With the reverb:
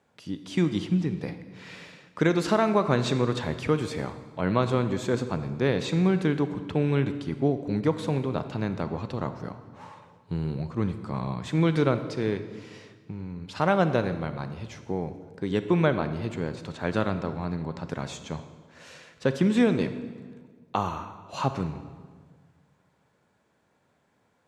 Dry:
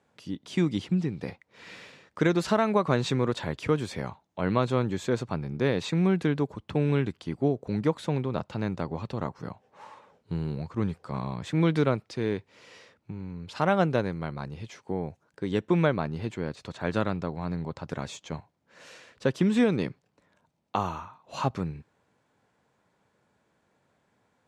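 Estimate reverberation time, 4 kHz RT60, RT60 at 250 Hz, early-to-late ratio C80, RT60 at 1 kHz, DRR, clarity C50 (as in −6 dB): 1.6 s, 1.2 s, 1.8 s, 12.0 dB, 1.5 s, 10.0 dB, 11.0 dB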